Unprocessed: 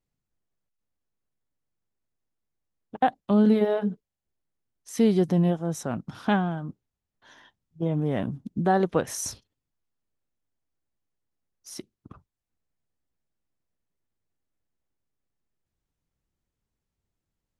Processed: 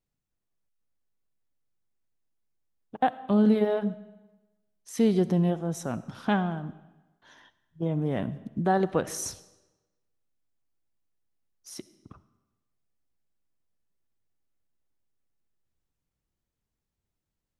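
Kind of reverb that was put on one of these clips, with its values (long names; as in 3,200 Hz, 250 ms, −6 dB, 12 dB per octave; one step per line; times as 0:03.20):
comb and all-pass reverb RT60 1.1 s, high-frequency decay 0.9×, pre-delay 25 ms, DRR 16 dB
level −2 dB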